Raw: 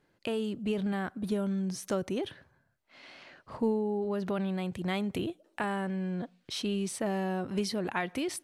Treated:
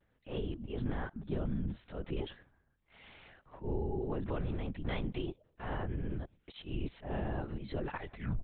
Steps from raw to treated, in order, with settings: tape stop at the end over 0.30 s; auto swell 0.123 s; low shelf 77 Hz +9 dB; LPC vocoder at 8 kHz whisper; vibrato 0.42 Hz 28 cents; gain -4.5 dB

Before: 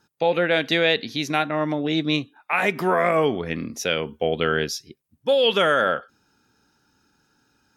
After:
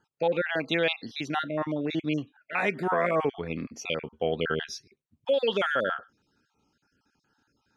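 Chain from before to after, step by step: random spectral dropouts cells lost 31%; air absorption 70 m; gain -4.5 dB

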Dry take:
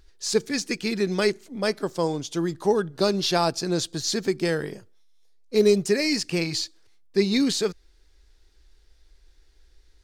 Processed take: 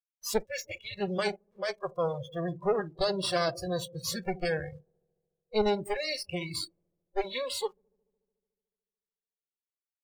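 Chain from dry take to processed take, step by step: minimum comb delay 1.8 ms; in parallel at -2 dB: compressor 6:1, threshold -33 dBFS, peak gain reduction 16 dB; on the sum: sample gate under -36.5 dBFS; on a send: dark delay 73 ms, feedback 81%, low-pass 520 Hz, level -12 dB; on the sum: spectral noise reduction 28 dB; mismatched tape noise reduction decoder only; gain -6.5 dB

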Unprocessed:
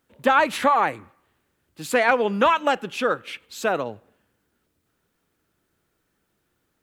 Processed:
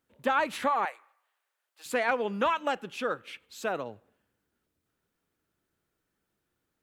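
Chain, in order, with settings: 0.85–1.86 HPF 630 Hz 24 dB/oct; gain -8.5 dB

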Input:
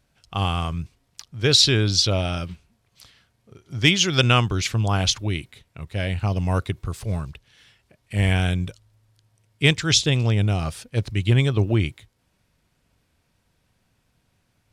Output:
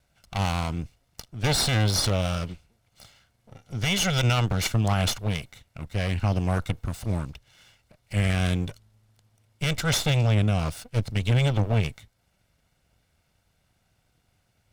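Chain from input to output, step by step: minimum comb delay 1.4 ms; limiter -14.5 dBFS, peak gain reduction 10 dB

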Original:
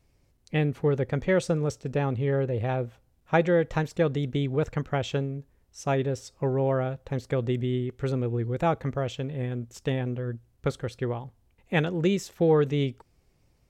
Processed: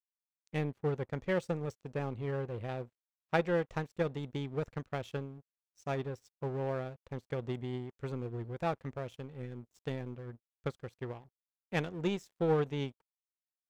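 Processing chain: crossover distortion -50.5 dBFS; power-law curve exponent 1.4; gain -4.5 dB

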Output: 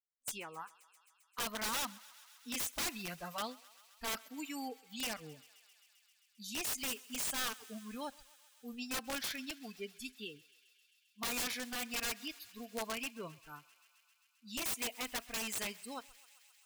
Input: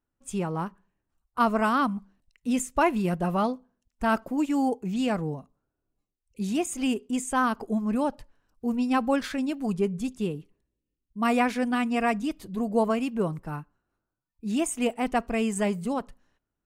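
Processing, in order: pre-emphasis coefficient 0.9; spectral noise reduction 23 dB; bell 2700 Hz +8 dB 2.1 oct; wrapped overs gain 31 dB; thinning echo 0.132 s, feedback 84%, high-pass 680 Hz, level -21 dB

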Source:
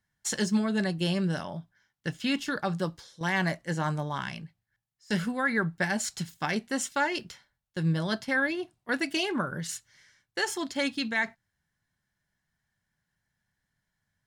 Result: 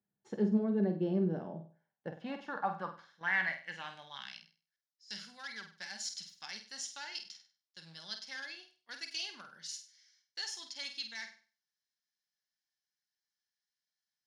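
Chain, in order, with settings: one-sided clip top -22.5 dBFS; thirty-one-band EQ 125 Hz +7 dB, 200 Hz +11 dB, 800 Hz +5 dB, 8000 Hz -9 dB, 12500 Hz -9 dB; on a send: flutter echo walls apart 8.4 m, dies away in 0.38 s; on the sum: band-pass sweep 390 Hz -> 5200 Hz, 1.59–4.57

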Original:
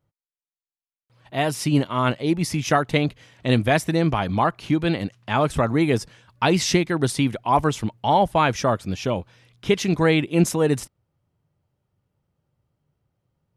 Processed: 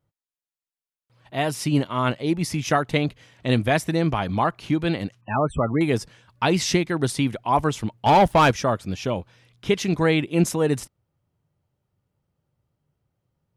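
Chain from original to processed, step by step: 5.21–5.81 loudest bins only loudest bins 32; 8.06–8.51 sample leveller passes 2; gain -1.5 dB

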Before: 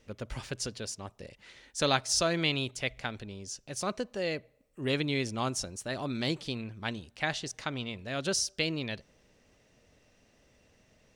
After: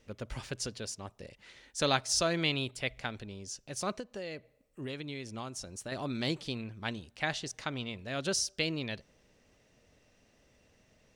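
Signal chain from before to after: 2.53–2.93 bell 6300 Hz -9.5 dB 0.23 oct; 3.99–5.92 compressor 6:1, threshold -36 dBFS, peak gain reduction 10.5 dB; gain -1.5 dB

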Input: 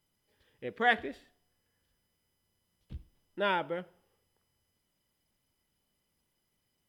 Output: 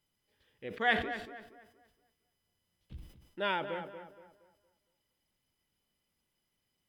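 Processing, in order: bell 2900 Hz +3.5 dB 1.6 oct; on a send: tape echo 0.233 s, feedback 38%, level -9 dB, low-pass 2100 Hz; on the sum: sustainer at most 92 dB/s; gain -4 dB

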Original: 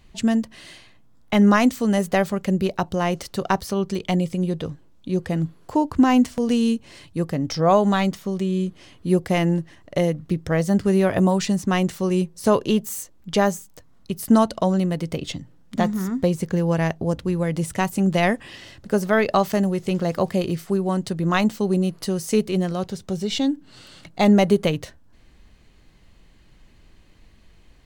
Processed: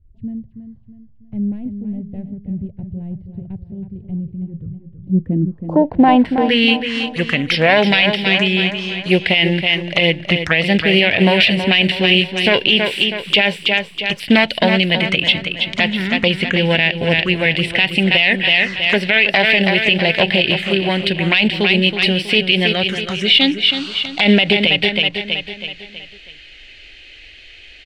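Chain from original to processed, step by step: self-modulated delay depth 0.14 ms; high shelf 3000 Hz +6 dB; in parallel at -10 dB: short-mantissa float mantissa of 2-bit; on the sum: tilt shelf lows -9 dB, about 730 Hz; envelope phaser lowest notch 160 Hz, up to 1200 Hz, full sweep at -21 dBFS; low-pass sweep 110 Hz -> 2700 Hz, 4.79–6.75; on a send: feedback echo 0.323 s, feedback 46%, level -9 dB; on the sum: maximiser +9.5 dB; gain -1 dB

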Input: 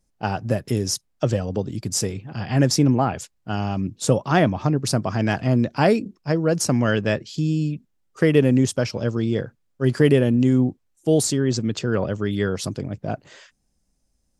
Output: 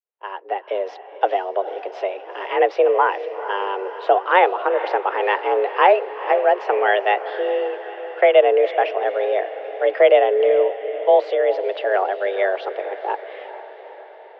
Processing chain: opening faded in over 0.91 s; mistuned SSB +190 Hz 260–2900 Hz; diffused feedback echo 0.457 s, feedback 61%, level -13 dB; gain +5 dB

